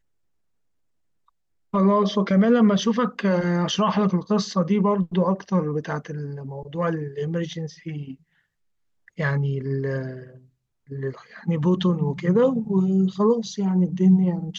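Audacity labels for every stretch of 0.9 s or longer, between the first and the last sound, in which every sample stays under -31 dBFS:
8.120000	9.190000	silence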